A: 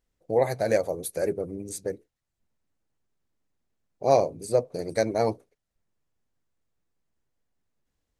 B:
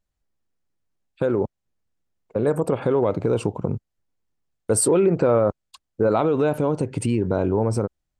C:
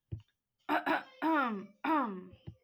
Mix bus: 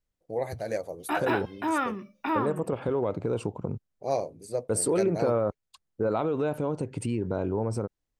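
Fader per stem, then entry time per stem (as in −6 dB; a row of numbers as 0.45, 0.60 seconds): −8.0, −7.5, +3.0 decibels; 0.00, 0.00, 0.40 seconds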